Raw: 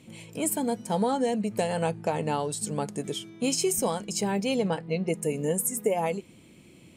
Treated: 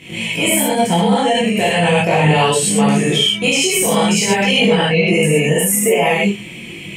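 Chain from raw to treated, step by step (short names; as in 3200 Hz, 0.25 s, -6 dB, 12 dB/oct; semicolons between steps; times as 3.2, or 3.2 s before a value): band shelf 2400 Hz +11.5 dB 1.1 oct; non-linear reverb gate 0.15 s flat, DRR -7.5 dB; maximiser +14.5 dB; detuned doubles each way 15 cents; gain -1 dB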